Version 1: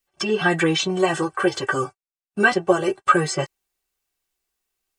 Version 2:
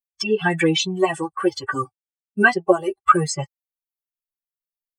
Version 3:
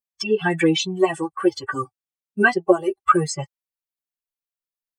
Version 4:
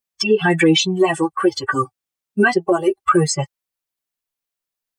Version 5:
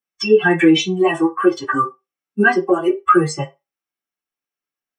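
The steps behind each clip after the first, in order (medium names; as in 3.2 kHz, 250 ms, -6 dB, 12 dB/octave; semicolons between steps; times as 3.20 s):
expander on every frequency bin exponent 2; trim +4 dB
dynamic bell 340 Hz, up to +4 dB, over -27 dBFS, Q 1.6; trim -2 dB
peak limiter -13 dBFS, peak gain reduction 11.5 dB; trim +7 dB
reverberation RT60 0.20 s, pre-delay 3 ms, DRR -1.5 dB; trim -9 dB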